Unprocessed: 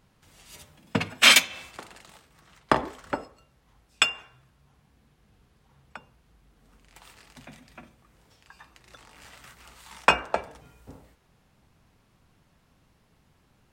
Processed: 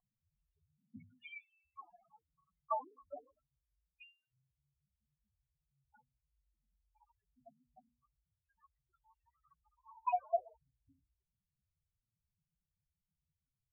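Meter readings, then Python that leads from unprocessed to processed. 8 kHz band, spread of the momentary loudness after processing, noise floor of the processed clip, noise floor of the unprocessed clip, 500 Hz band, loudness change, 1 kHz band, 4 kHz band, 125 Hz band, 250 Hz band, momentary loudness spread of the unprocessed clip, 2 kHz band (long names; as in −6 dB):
below −40 dB, 23 LU, below −85 dBFS, −65 dBFS, −11.0 dB, −18.5 dB, −11.5 dB, below −40 dB, below −25 dB, −28.0 dB, 20 LU, −33.0 dB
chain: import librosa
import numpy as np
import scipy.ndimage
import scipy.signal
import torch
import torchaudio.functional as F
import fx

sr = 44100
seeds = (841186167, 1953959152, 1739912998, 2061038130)

y = fx.spec_topn(x, sr, count=2)
y = fx.formant_cascade(y, sr, vowel='a')
y = fx.hum_notches(y, sr, base_hz=60, count=5)
y = y * 10.0 ** (9.5 / 20.0)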